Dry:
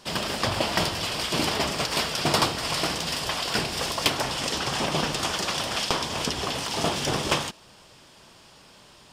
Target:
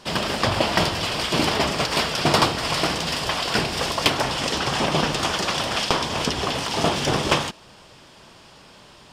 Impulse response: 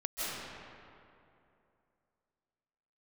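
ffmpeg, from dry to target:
-af "highshelf=f=6100:g=-7.5,volume=1.78"

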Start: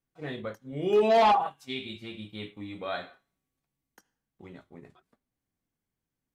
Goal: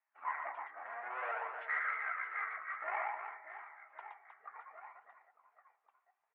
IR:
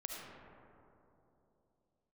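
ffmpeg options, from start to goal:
-filter_complex "[0:a]asetrate=24750,aresample=44100,atempo=1.7818,alimiter=level_in=1.12:limit=0.0631:level=0:latency=1:release=58,volume=0.891,aeval=exprs='(tanh(39.8*val(0)+0.4)-tanh(0.4))/39.8':c=same,asplit=2[s0][s1];[1:a]atrim=start_sample=2205[s2];[s1][s2]afir=irnorm=-1:irlink=0,volume=0.141[s3];[s0][s3]amix=inputs=2:normalize=0,acompressor=threshold=0.0178:ratio=6,asuperpass=centerf=1300:order=8:qfactor=0.79,aecho=1:1:120|312|619.2|1111|1897:0.631|0.398|0.251|0.158|0.1,flanger=delay=0.5:depth=2.2:regen=58:speed=0.58:shape=sinusoidal,volume=4.47"

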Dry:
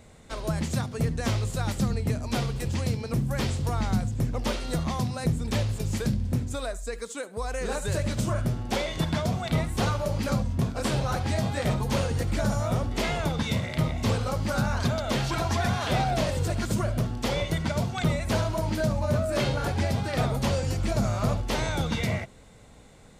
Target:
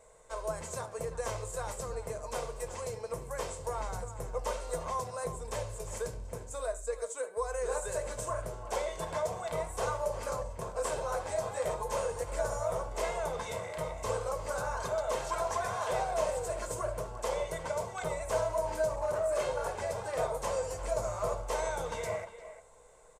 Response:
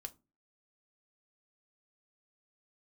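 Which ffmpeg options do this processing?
-filter_complex "[0:a]bandreject=f=190.8:t=h:w=4,bandreject=f=381.6:t=h:w=4,bandreject=f=572.4:t=h:w=4,bandreject=f=763.2:t=h:w=4,bandreject=f=954:t=h:w=4,bandreject=f=1144.8:t=h:w=4,bandreject=f=1335.6:t=h:w=4,bandreject=f=1526.4:t=h:w=4,bandreject=f=1717.2:t=h:w=4,bandreject=f=1908:t=h:w=4,bandreject=f=2098.8:t=h:w=4,bandreject=f=2289.6:t=h:w=4,bandreject=f=2480.4:t=h:w=4,bandreject=f=2671.2:t=h:w=4,bandreject=f=2862:t=h:w=4,bandreject=f=3052.8:t=h:w=4,bandreject=f=3243.6:t=h:w=4,bandreject=f=3434.4:t=h:w=4,bandreject=f=3625.2:t=h:w=4,bandreject=f=3816:t=h:w=4,bandreject=f=4006.8:t=h:w=4,bandreject=f=4197.6:t=h:w=4,bandreject=f=4388.4:t=h:w=4,bandreject=f=4579.2:t=h:w=4,bandreject=f=4770:t=h:w=4,bandreject=f=4960.8:t=h:w=4,bandreject=f=5151.6:t=h:w=4[s0];[1:a]atrim=start_sample=2205,asetrate=57330,aresample=44100[s1];[s0][s1]afir=irnorm=-1:irlink=0,asettb=1/sr,asplit=3[s2][s3][s4];[s2]atrim=end=18.934[s5];[s3]atrim=start=18.93:end=19.41,asetpts=PTS-STARTPTS,afade=t=in:d=0.004:c=qsin,afade=t=out:st=0.476:d=0.004:c=qsin,asoftclip=type=hard:threshold=0.0355[s6];[s4]atrim=start=19.406[s7];[s5][s6]acrossfade=d=0.004:c1=hsin:c2=qsin[s8];[s8][s7]acrossfade=d=0.004:c1=qsin:c2=hsin,equalizer=f=125:t=o:w=1:g=-9,equalizer=f=250:t=o:w=1:g=-11,equalizer=f=500:t=o:w=1:g=10,equalizer=f=1000:t=o:w=1:g=9,equalizer=f=4000:t=o:w=1:g=-6,equalizer=f=8000:t=o:w=1:g=12,asplit=2[s9][s10];[s10]adelay=350,highpass=300,lowpass=3400,asoftclip=type=hard:threshold=0.0708,volume=0.251[s11];[s9][s11]amix=inputs=2:normalize=0,volume=0.596"

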